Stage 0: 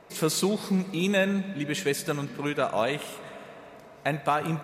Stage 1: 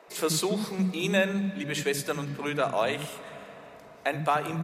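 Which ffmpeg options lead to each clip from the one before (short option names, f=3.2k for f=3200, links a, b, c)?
-filter_complex "[0:a]acrossover=split=270[a][b];[a]adelay=80[c];[c][b]amix=inputs=2:normalize=0"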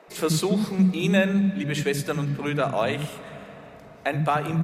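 -af "bass=f=250:g=8,treble=f=4k:g=-3,bandreject=f=1k:w=26,volume=2dB"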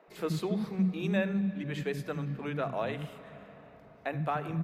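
-af "equalizer=f=8.6k:t=o:w=1.8:g=-12,volume=-8.5dB"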